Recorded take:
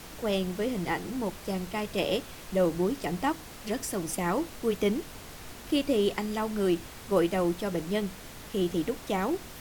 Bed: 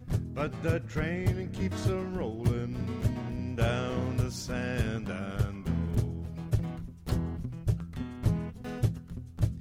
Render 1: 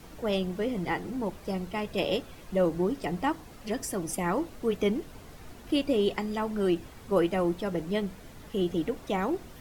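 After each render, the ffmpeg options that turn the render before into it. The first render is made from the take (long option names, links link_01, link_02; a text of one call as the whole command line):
ffmpeg -i in.wav -af "afftdn=noise_reduction=9:noise_floor=-45" out.wav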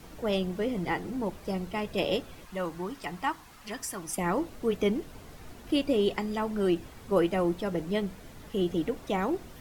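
ffmpeg -i in.wav -filter_complex "[0:a]asettb=1/sr,asplit=3[link_01][link_02][link_03];[link_01]atrim=end=2.454[link_04];[link_02]atrim=start=2.45:end=4.18,asetpts=PTS-STARTPTS,afade=type=in:duration=0.004:curve=qsin,afade=type=out:start_time=1.726:duration=0.004:curve=qsin,lowshelf=frequency=750:width_type=q:width=1.5:gain=-7.5[link_05];[link_03]atrim=start=4.176[link_06];[link_04][link_05]acrossfade=duration=0.004:curve1=hsin:curve2=qsin[link_07];[link_07][link_06]acrossfade=duration=0.004:curve1=qsin:curve2=hsin" out.wav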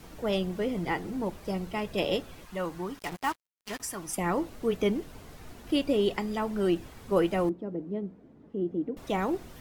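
ffmpeg -i in.wav -filter_complex "[0:a]asettb=1/sr,asplit=3[link_01][link_02][link_03];[link_01]atrim=end=2.994[link_04];[link_02]atrim=start=2.99:end=3.8,asetpts=PTS-STARTPTS,afade=type=in:duration=0.004:curve=qsin,afade=type=out:start_time=0.806:duration=0.004:curve=qsin,acrusher=bits=5:mix=0:aa=0.5[link_05];[link_03]atrim=start=3.796[link_06];[link_04][link_05]acrossfade=duration=0.004:curve1=hsin:curve2=qsin[link_07];[link_07][link_06]acrossfade=duration=0.004:curve1=qsin:curve2=hsin,asettb=1/sr,asplit=3[link_08][link_09][link_10];[link_08]atrim=end=7.494[link_11];[link_09]atrim=start=7.49:end=8.97,asetpts=PTS-STARTPTS,afade=type=in:duration=0.004:curve=qsin,afade=type=out:start_time=1.476:duration=0.004:curve=qsin,bandpass=frequency=280:width_type=q:width=1.5[link_12];[link_10]atrim=start=8.966[link_13];[link_11][link_12]acrossfade=duration=0.004:curve1=hsin:curve2=qsin[link_14];[link_14][link_13]acrossfade=duration=0.004:curve1=qsin:curve2=hsin" out.wav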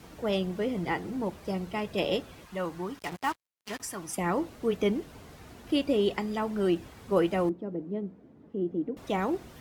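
ffmpeg -i in.wav -af "highpass=52,highshelf=frequency=8700:gain=-4" out.wav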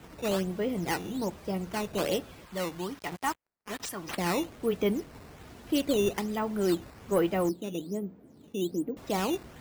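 ffmpeg -i in.wav -af "acrusher=samples=8:mix=1:aa=0.000001:lfo=1:lforange=12.8:lforate=1.2,asoftclip=type=tanh:threshold=-14.5dB" out.wav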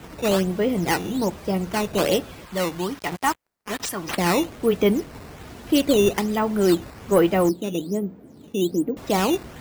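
ffmpeg -i in.wav -af "volume=8.5dB" out.wav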